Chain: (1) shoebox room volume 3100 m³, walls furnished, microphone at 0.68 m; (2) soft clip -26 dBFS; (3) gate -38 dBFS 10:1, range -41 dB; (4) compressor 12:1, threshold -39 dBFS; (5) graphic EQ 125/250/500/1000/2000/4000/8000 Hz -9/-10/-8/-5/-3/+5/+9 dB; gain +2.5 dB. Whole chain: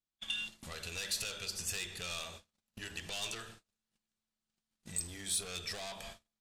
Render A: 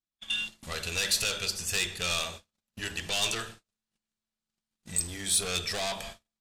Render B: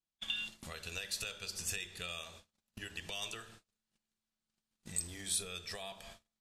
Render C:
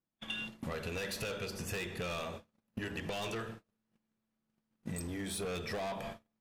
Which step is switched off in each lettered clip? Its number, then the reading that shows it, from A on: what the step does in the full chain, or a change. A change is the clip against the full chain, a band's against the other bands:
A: 4, mean gain reduction 8.0 dB; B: 2, distortion -7 dB; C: 5, 8 kHz band -15.5 dB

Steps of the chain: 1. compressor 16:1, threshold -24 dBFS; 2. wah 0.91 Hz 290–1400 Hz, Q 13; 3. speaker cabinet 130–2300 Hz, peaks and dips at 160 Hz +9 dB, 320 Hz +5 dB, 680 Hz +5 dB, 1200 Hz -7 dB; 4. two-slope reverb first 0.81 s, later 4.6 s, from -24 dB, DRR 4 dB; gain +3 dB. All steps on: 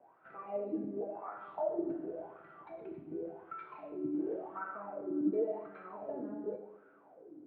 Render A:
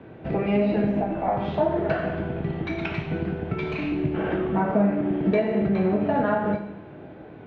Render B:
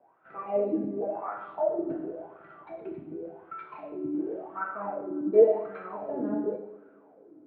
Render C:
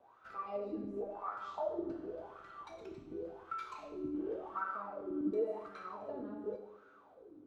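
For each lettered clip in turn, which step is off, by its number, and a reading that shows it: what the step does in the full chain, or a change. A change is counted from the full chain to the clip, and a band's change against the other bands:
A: 2, crest factor change -3.5 dB; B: 1, mean gain reduction 5.5 dB; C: 3, momentary loudness spread change -3 LU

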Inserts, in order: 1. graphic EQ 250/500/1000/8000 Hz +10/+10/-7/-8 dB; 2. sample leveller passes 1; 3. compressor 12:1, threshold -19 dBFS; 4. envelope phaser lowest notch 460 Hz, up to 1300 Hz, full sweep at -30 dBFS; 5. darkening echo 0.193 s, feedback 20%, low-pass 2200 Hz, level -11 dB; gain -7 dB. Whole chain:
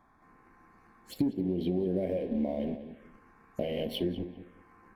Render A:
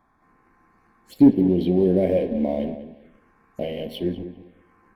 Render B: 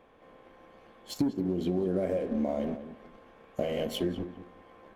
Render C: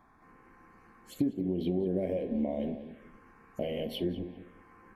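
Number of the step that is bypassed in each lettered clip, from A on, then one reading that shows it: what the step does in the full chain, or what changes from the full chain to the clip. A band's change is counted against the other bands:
3, mean gain reduction 7.5 dB; 4, 1 kHz band +4.0 dB; 2, momentary loudness spread change +4 LU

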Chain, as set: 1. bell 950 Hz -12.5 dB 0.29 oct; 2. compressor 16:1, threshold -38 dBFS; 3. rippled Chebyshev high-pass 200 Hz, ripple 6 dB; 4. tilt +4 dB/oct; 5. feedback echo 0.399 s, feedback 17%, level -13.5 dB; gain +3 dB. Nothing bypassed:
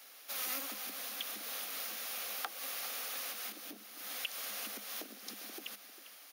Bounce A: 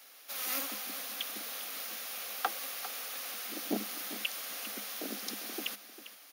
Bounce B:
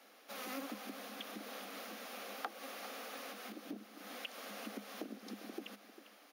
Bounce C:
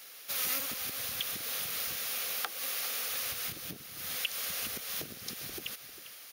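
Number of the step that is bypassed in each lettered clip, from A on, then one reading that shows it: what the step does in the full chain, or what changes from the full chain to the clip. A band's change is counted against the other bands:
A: 2, mean gain reduction 4.0 dB; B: 4, 8 kHz band -12.0 dB; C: 3, 1 kHz band -3.0 dB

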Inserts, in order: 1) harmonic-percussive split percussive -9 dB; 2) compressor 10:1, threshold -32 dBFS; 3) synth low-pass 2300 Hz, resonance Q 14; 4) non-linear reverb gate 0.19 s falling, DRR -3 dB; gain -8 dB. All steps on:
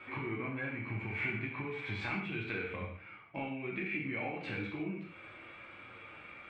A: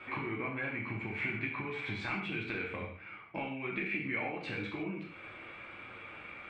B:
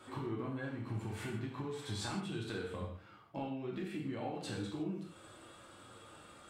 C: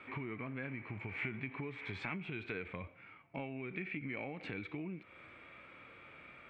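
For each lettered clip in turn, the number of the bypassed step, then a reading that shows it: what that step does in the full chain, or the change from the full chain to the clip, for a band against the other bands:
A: 1, 125 Hz band -3.5 dB; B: 3, 2 kHz band -11.5 dB; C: 4, loudness change -4.5 LU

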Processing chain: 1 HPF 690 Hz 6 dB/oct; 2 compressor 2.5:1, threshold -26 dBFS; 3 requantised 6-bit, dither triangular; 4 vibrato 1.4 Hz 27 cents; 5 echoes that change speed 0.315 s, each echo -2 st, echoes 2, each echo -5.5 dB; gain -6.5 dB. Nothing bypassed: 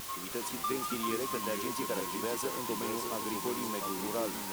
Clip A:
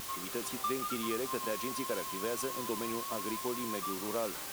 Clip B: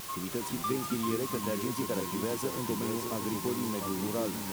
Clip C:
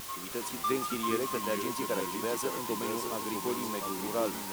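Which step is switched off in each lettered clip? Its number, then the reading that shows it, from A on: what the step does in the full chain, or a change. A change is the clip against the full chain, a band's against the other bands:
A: 5, loudness change -1.0 LU; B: 1, 125 Hz band +10.0 dB; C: 2, crest factor change +1.5 dB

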